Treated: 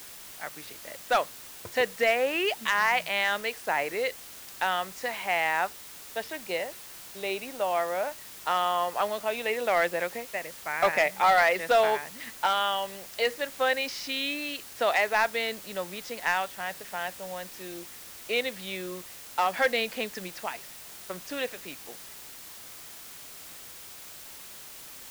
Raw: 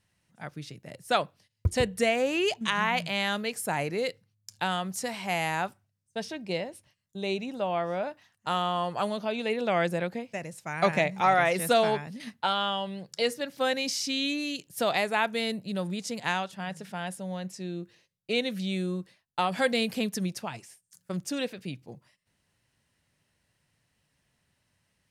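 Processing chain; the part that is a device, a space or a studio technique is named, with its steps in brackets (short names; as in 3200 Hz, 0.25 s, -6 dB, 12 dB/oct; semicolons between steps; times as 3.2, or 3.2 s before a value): drive-through speaker (BPF 480–3200 Hz; bell 1900 Hz +4.5 dB 0.32 oct; hard clip -18.5 dBFS, distortion -17 dB; white noise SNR 15 dB); gain +3 dB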